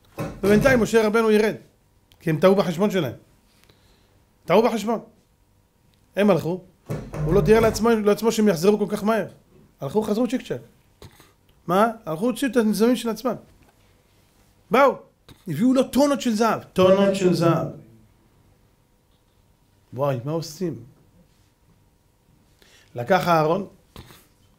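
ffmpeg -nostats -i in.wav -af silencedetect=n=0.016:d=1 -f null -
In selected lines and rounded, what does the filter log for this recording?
silence_start: 5.04
silence_end: 6.16 | silence_duration: 1.13
silence_start: 13.40
silence_end: 14.71 | silence_duration: 1.31
silence_start: 17.78
silence_end: 19.93 | silence_duration: 2.14
silence_start: 20.83
silence_end: 22.62 | silence_duration: 1.79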